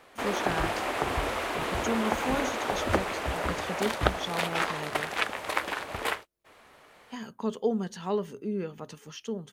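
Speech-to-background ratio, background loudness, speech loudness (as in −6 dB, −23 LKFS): −4.5 dB, −30.5 LKFS, −35.0 LKFS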